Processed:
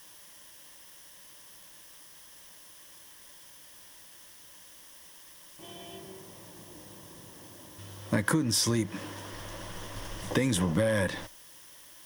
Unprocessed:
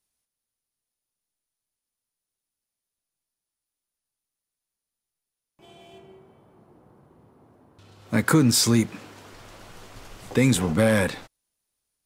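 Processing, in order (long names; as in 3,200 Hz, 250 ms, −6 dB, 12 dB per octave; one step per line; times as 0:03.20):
in parallel at −3 dB: bit-depth reduction 8 bits, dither triangular
on the sum: EQ curve with evenly spaced ripples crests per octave 1.2, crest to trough 8 dB
downward compressor 10 to 1, threshold −21 dBFS, peak gain reduction 15.5 dB
level −2 dB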